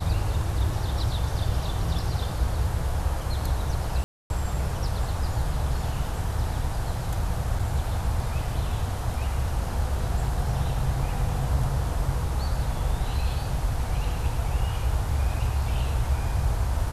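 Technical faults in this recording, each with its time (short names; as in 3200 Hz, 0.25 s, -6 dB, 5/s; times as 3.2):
4.04–4.3 gap 0.261 s
7.59 gap 4.2 ms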